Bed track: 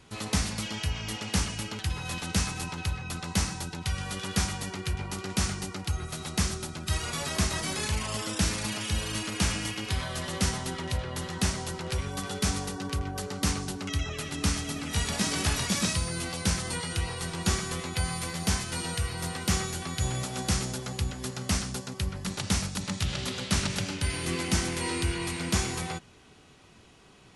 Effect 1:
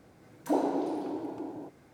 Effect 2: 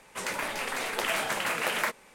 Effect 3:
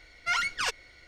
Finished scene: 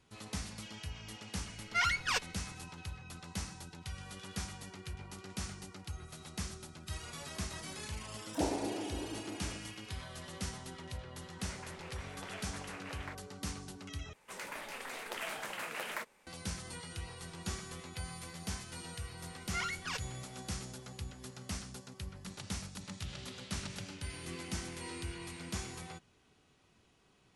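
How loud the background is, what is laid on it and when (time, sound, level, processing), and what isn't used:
bed track -13 dB
1.48 s: add 3 -3 dB
7.88 s: add 1 -7 dB
11.24 s: add 2 -17.5 dB + distance through air 68 m
14.13 s: replace with 2 -11.5 dB
19.27 s: add 3 -10 dB

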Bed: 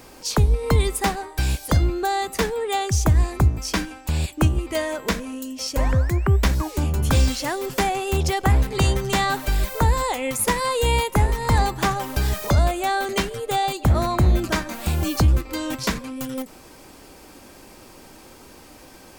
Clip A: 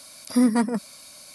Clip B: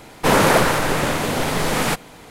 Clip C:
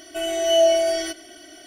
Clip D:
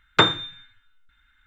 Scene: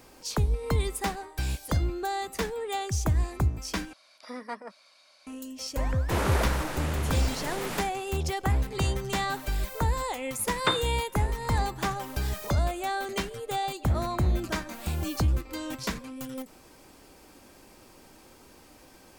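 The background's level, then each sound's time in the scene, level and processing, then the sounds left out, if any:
bed -8 dB
3.93 s: replace with A -7.5 dB + three-band isolator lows -23 dB, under 470 Hz, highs -23 dB, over 4.8 kHz
5.85 s: add B -14.5 dB
10.48 s: add D -9.5 dB
not used: C

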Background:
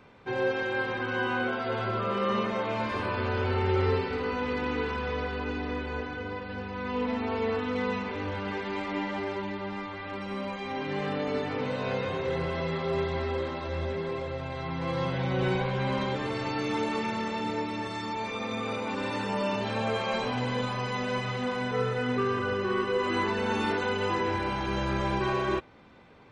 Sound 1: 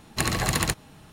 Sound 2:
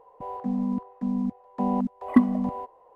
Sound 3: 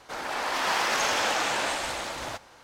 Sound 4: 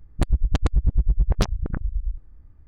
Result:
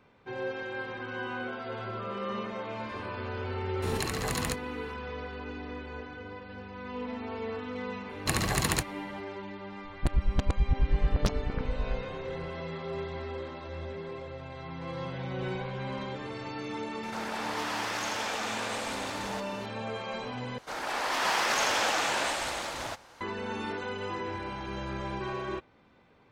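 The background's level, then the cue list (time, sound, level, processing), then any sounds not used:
background -7 dB
3.82 s: add 1 -9 dB + swell ahead of each attack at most 36 dB/s
8.09 s: add 1 -3.5 dB + tape noise reduction on one side only decoder only
9.84 s: add 4 -6 dB
17.03 s: add 3 -8.5 dB + level flattener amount 50%
20.58 s: replace with 3 -1.5 dB
not used: 2

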